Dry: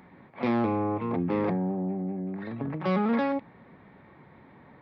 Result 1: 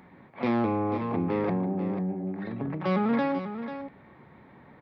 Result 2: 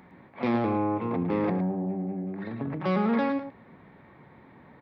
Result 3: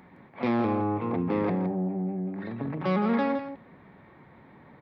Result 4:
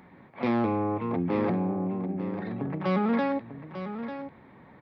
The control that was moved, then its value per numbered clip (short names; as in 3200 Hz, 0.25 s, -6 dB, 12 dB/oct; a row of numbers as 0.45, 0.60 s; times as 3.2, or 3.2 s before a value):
echo, time: 0.491, 0.109, 0.164, 0.896 s